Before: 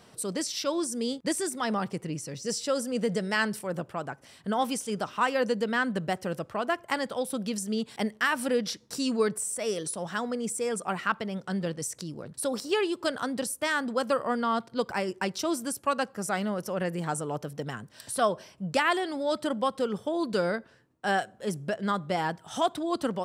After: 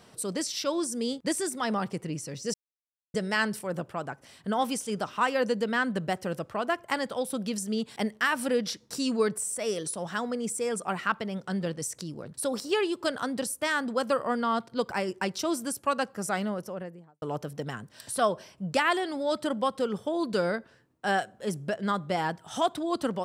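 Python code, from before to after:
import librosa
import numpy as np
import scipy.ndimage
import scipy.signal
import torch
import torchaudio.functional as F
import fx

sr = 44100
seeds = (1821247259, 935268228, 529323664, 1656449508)

y = fx.studio_fade_out(x, sr, start_s=16.33, length_s=0.89)
y = fx.edit(y, sr, fx.silence(start_s=2.54, length_s=0.6), tone=tone)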